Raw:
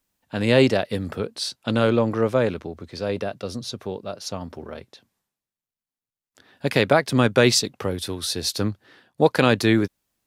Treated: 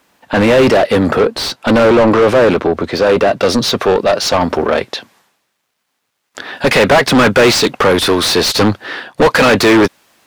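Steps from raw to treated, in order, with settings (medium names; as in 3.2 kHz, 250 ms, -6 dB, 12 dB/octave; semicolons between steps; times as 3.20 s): overdrive pedal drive 36 dB, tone 1.2 kHz, clips at -2 dBFS, from 3.41 s tone 2.4 kHz; trim +1.5 dB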